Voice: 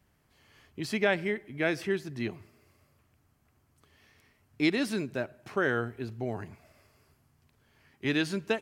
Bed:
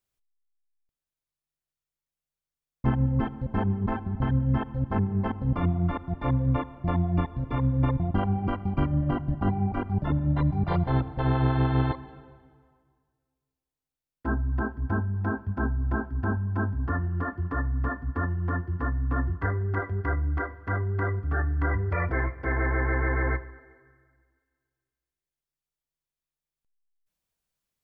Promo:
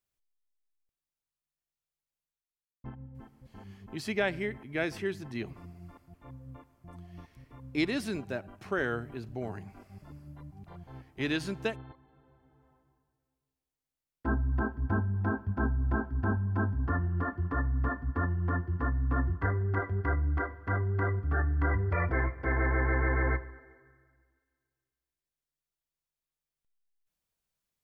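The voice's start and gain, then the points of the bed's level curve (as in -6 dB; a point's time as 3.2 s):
3.15 s, -3.0 dB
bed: 2.22 s -3.5 dB
3.04 s -23 dB
11.89 s -23 dB
12.71 s -2 dB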